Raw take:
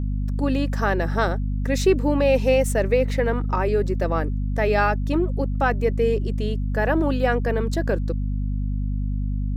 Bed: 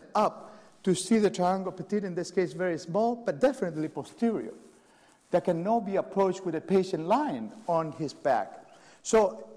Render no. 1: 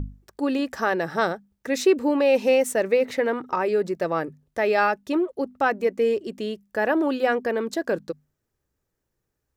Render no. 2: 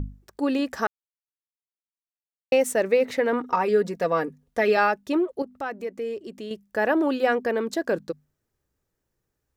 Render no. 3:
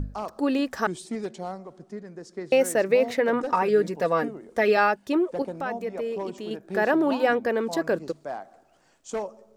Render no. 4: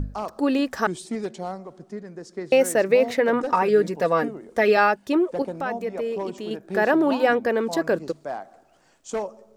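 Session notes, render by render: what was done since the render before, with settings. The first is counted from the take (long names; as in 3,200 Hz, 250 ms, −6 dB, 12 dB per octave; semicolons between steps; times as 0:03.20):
mains-hum notches 50/100/150/200/250 Hz
0:00.87–0:02.52: silence; 0:03.32–0:04.77: comb filter 4.2 ms; 0:05.42–0:06.51: downward compressor 1.5 to 1, threshold −43 dBFS
mix in bed −8.5 dB
level +2.5 dB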